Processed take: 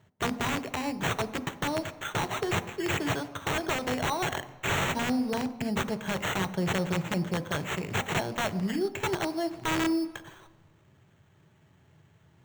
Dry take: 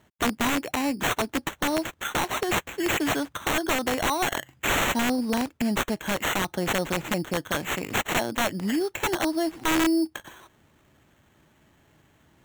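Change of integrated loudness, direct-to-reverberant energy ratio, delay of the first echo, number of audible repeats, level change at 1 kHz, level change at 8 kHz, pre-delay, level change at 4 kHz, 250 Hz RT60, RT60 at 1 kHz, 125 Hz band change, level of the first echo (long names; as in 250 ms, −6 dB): −4.0 dB, 11.0 dB, no echo audible, no echo audible, −4.0 dB, −7.0 dB, 3 ms, −5.0 dB, 0.80 s, 1.1 s, +3.0 dB, no echo audible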